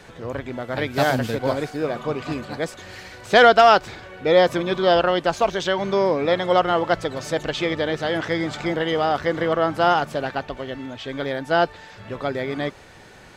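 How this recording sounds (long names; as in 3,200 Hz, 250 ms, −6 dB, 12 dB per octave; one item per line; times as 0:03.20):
background noise floor −46 dBFS
spectral slope −3.0 dB per octave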